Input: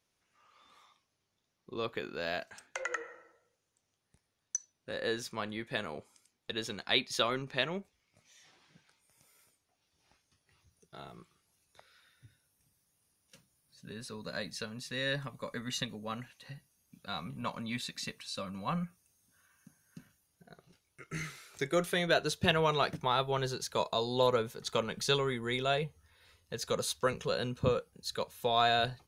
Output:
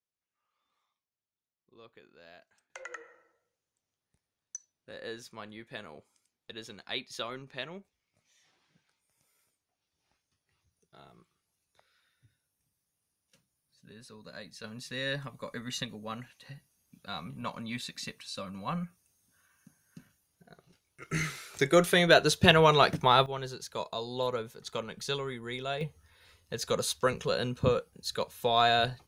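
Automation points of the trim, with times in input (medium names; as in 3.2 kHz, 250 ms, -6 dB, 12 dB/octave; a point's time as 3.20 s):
-18.5 dB
from 2.70 s -7 dB
from 14.64 s 0 dB
from 21.02 s +7.5 dB
from 23.26 s -4 dB
from 25.81 s +3 dB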